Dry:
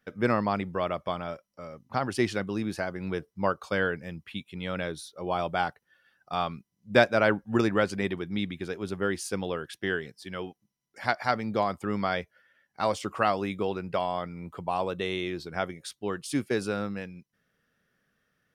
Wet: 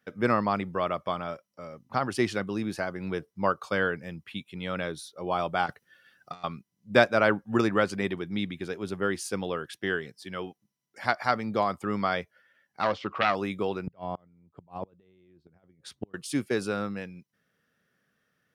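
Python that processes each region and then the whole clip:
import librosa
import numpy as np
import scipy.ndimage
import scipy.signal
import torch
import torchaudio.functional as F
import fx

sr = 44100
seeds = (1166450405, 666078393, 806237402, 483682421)

y = fx.chain(x, sr, fx.self_delay(depth_ms=0.076),
    fx.peak_eq(hz=880.0, db=-7.0, octaves=1.1),
    fx.over_compress(threshold_db=-40.0, ratio=-0.5), at=(5.66, 6.44))
y = fx.chain(y, sr, fx.self_delay(depth_ms=0.28),
    fx.lowpass(hz=4400.0, slope=24), at=(12.82, 13.35))
y = fx.chain(y, sr, fx.over_compress(threshold_db=-34.0, ratio=-1.0),
    fx.tilt_eq(slope=-3.5),
    fx.gate_flip(shuts_db=-21.0, range_db=-32), at=(13.87, 16.14))
y = scipy.signal.sosfilt(scipy.signal.butter(2, 87.0, 'highpass', fs=sr, output='sos'), y)
y = fx.dynamic_eq(y, sr, hz=1200.0, q=4.0, threshold_db=-44.0, ratio=4.0, max_db=4)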